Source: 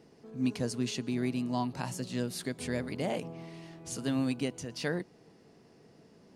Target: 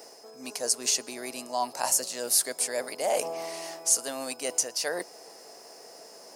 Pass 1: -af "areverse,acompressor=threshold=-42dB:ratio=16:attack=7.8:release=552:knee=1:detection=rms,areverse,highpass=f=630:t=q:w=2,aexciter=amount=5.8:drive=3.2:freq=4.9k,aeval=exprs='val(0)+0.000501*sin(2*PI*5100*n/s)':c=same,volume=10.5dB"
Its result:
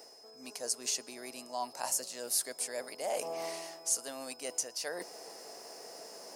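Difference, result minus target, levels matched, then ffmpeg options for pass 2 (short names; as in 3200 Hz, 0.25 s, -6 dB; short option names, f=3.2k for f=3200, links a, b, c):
compressor: peak gain reduction +8 dB
-af "areverse,acompressor=threshold=-33.5dB:ratio=16:attack=7.8:release=552:knee=1:detection=rms,areverse,highpass=f=630:t=q:w=2,aexciter=amount=5.8:drive=3.2:freq=4.9k,aeval=exprs='val(0)+0.000501*sin(2*PI*5100*n/s)':c=same,volume=10.5dB"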